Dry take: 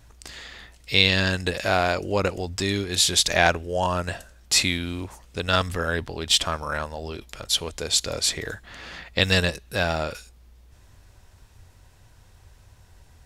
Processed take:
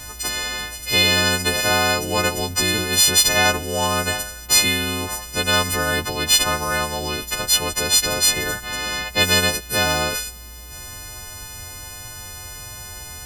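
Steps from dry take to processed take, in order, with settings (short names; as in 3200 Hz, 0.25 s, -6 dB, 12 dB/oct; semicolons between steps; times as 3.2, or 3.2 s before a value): frequency quantiser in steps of 3 st; spectral compressor 2:1; gain -5 dB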